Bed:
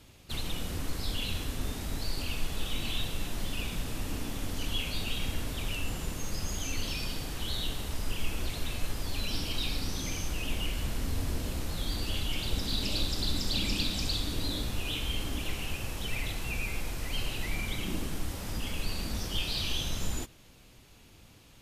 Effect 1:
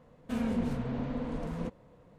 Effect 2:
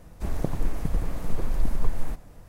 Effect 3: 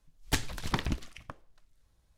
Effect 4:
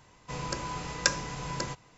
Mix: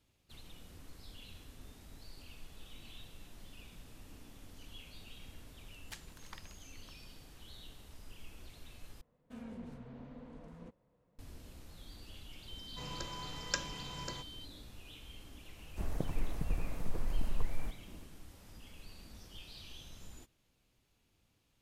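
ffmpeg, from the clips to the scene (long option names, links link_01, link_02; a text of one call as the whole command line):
ffmpeg -i bed.wav -i cue0.wav -i cue1.wav -i cue2.wav -i cue3.wav -filter_complex "[0:a]volume=-19dB[link_01];[3:a]highpass=960[link_02];[4:a]aeval=exprs='val(0)+0.0112*sin(2*PI*3100*n/s)':channel_layout=same[link_03];[2:a]acontrast=39[link_04];[link_01]asplit=2[link_05][link_06];[link_05]atrim=end=9.014[link_07];[1:a]atrim=end=2.18,asetpts=PTS-STARTPTS,volume=-16dB[link_08];[link_06]atrim=start=11.186[link_09];[link_02]atrim=end=2.17,asetpts=PTS-STARTPTS,volume=-17dB,afade=type=in:duration=0.004:curve=hsin,afade=type=out:start_time=2.166:duration=0.004:curve=hsin,adelay=5590[link_10];[link_03]atrim=end=1.97,asetpts=PTS-STARTPTS,volume=-10dB,afade=type=in:duration=0.004:curve=hsin,afade=type=out:start_time=1.966:duration=0.004:curve=hsin,adelay=12480[link_11];[link_04]atrim=end=2.48,asetpts=PTS-STARTPTS,volume=-14dB,afade=type=in:duration=0.004:curve=hsin,afade=type=out:start_time=2.476:duration=0.004:curve=hsin,adelay=686196S[link_12];[link_07][link_08]acrossfade=duration=0.004:curve1=hsin:curve2=hsin[link_13];[link_13][link_09]acrossfade=duration=0.004:curve1=hsin:curve2=hsin[link_14];[link_14][link_10][link_11][link_12]amix=inputs=4:normalize=0" out.wav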